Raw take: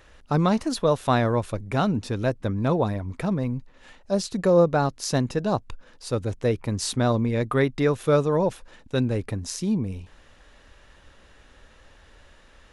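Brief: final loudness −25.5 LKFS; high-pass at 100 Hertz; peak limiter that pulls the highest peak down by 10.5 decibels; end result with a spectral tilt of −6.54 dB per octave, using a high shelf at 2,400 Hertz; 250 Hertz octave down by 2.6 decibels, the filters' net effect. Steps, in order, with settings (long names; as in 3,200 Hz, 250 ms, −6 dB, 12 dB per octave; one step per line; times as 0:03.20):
high-pass filter 100 Hz
parametric band 250 Hz −3 dB
high-shelf EQ 2,400 Hz −8.5 dB
level +5 dB
brickwall limiter −14.5 dBFS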